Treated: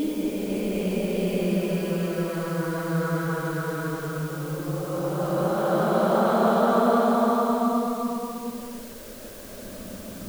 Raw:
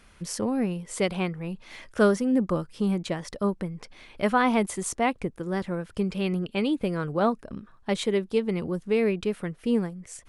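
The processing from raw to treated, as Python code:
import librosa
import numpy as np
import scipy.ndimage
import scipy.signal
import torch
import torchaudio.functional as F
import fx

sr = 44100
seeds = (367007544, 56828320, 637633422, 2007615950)

y = fx.paulstretch(x, sr, seeds[0], factor=14.0, window_s=0.25, from_s=6.77)
y = fx.dmg_noise_colour(y, sr, seeds[1], colour='white', level_db=-47.0)
y = F.gain(torch.from_numpy(y), 1.5).numpy()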